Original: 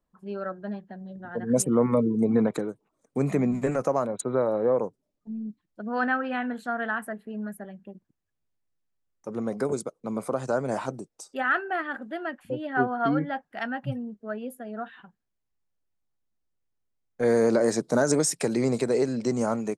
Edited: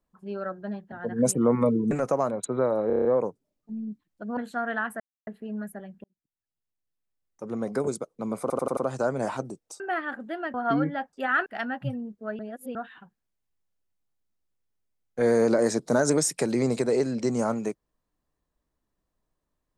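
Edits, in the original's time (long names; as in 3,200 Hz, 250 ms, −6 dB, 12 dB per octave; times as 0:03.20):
0:00.92–0:01.23: remove
0:02.22–0:03.67: remove
0:04.63: stutter 0.03 s, 7 plays
0:05.95–0:06.49: remove
0:07.12: splice in silence 0.27 s
0:07.89–0:09.58: fade in
0:10.26: stutter 0.09 s, 5 plays
0:11.29–0:11.62: move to 0:13.48
0:12.36–0:12.89: remove
0:14.41–0:14.77: reverse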